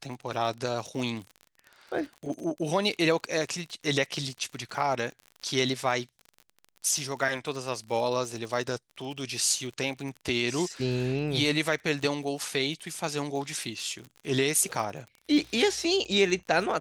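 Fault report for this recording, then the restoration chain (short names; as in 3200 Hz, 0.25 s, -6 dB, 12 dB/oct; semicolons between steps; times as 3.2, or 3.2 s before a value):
crackle 48/s -36 dBFS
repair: de-click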